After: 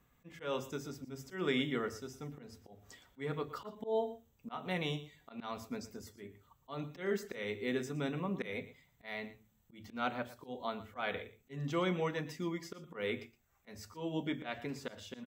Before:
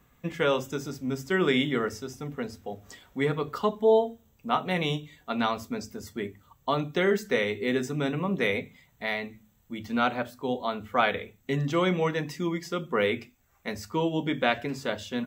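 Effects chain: auto swell 0.17 s; echo 0.116 s -16 dB; gain -8.5 dB

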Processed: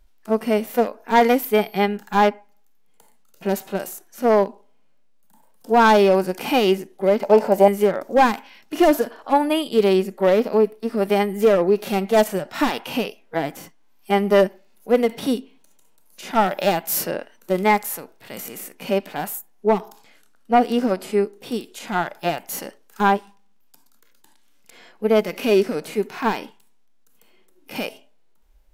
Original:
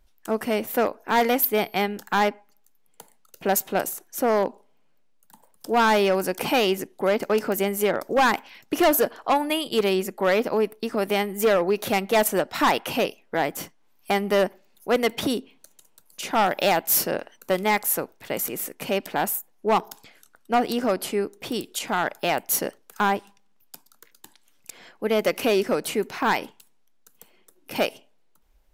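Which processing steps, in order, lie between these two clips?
harmonic-percussive split percussive -17 dB; 7.23–7.68 band shelf 720 Hz +13 dB 1.2 oct; gain +6 dB

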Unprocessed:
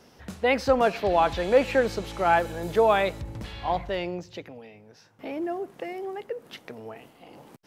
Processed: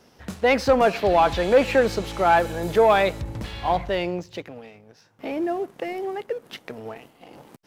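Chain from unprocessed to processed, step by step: sample leveller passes 1; gain +1 dB

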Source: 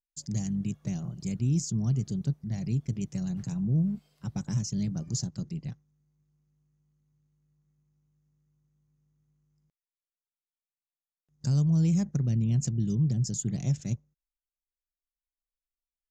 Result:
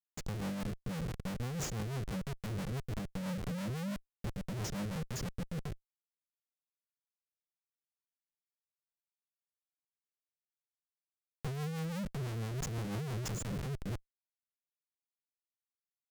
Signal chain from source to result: spectral gate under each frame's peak -20 dB strong; Schmitt trigger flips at -37 dBFS; rotary speaker horn 6 Hz; gain -4 dB

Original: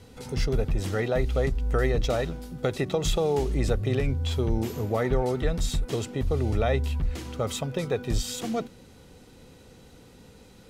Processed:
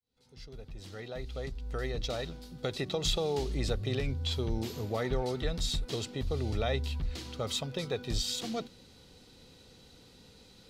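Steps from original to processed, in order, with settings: opening faded in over 3.00 s; bell 4200 Hz +11 dB 1 oct; gain -7 dB

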